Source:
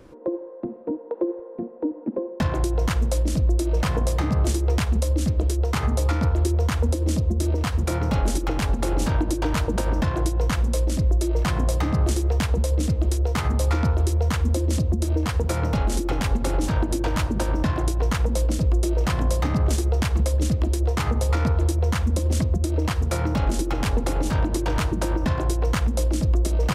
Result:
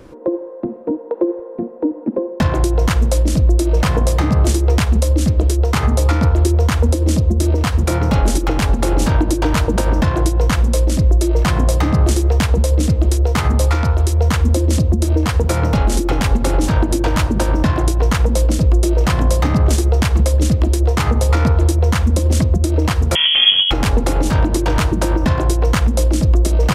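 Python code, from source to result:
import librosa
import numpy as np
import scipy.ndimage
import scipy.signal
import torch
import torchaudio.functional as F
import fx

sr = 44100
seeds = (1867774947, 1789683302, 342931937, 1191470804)

y = fx.peak_eq(x, sr, hz=230.0, db=-6.5, octaves=1.8, at=(13.67, 14.18))
y = fx.freq_invert(y, sr, carrier_hz=3300, at=(23.15, 23.71))
y = y * librosa.db_to_amplitude(7.5)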